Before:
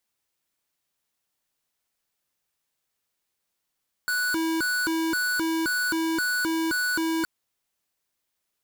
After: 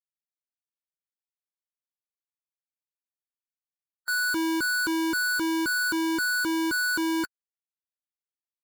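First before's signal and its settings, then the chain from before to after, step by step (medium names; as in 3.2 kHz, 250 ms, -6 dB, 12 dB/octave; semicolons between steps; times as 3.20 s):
siren hi-lo 325–1480 Hz 1.9 per s square -25.5 dBFS 3.17 s
expander on every frequency bin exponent 2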